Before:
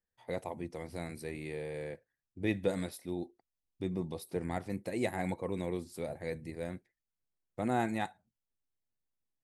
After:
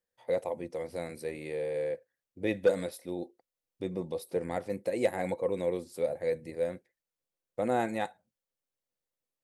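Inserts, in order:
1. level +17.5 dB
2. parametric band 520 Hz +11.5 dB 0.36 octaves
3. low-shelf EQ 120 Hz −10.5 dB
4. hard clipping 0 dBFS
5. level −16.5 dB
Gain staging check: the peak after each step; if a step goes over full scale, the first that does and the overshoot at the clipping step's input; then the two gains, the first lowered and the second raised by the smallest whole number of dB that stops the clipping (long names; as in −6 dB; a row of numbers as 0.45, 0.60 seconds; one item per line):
−0.5, +6.0, +5.5, 0.0, −16.5 dBFS
step 2, 5.5 dB
step 1 +11.5 dB, step 5 −10.5 dB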